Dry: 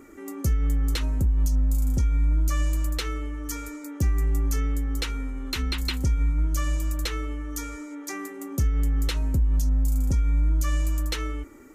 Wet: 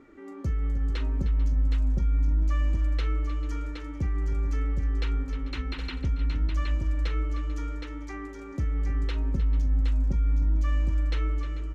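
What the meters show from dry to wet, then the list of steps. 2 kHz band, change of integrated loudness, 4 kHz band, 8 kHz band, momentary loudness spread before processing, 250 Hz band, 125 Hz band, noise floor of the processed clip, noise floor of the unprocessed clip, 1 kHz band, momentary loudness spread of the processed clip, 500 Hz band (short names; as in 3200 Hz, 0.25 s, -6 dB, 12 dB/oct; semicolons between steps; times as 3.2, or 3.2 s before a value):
-4.5 dB, -2.0 dB, -9.0 dB, -19.0 dB, 10 LU, -3.5 dB, -2.0 dB, -40 dBFS, -40 dBFS, -3.5 dB, 8 LU, -3.0 dB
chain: requantised 10-bit, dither none; LPF 3000 Hz 12 dB/oct; on a send: tapped delay 41/308/443/768 ms -14/-13/-17/-5.5 dB; on the sum: gain -5 dB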